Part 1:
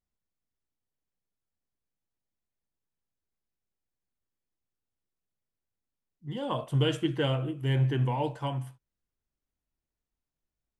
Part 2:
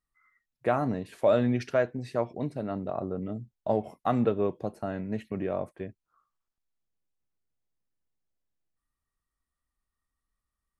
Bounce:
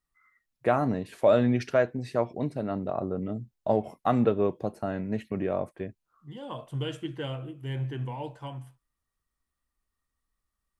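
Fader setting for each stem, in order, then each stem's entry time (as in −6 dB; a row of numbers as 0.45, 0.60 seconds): −6.5, +2.0 decibels; 0.00, 0.00 seconds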